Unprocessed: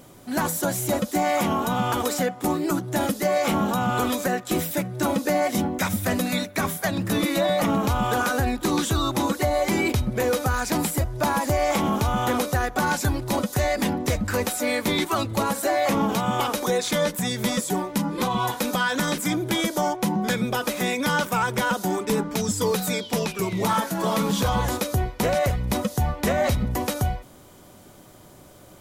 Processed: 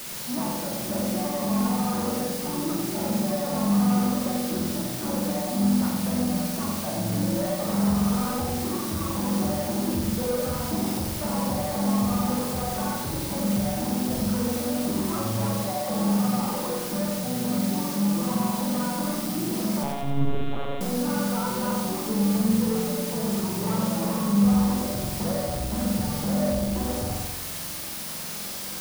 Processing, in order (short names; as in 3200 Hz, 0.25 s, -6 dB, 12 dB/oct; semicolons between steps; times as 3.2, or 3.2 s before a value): 7.65–8.25 self-modulated delay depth 0.56 ms; steep low-pass 1300 Hz 48 dB/oct; limiter -18.5 dBFS, peak gain reduction 5.5 dB; flange 0.92 Hz, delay 7.2 ms, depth 9.4 ms, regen +23%; requantised 6-bit, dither triangular; soft clip -28 dBFS, distortion -12 dB; flutter echo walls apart 7.7 m, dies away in 0.6 s; on a send at -13 dB: reverb RT60 0.15 s, pre-delay 3 ms; 19.83–20.81 on the sum: monotone LPC vocoder at 8 kHz 140 Hz; lo-fi delay 90 ms, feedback 55%, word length 9-bit, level -5 dB